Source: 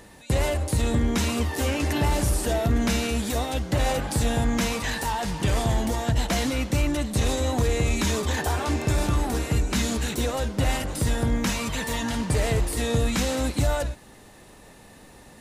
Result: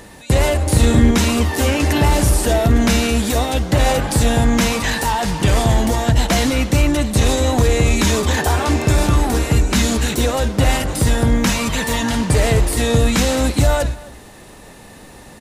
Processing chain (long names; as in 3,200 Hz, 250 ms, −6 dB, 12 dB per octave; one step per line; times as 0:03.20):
0:00.63–0:01.11: double-tracking delay 38 ms −3 dB
slap from a distant wall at 45 metres, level −20 dB
level +8.5 dB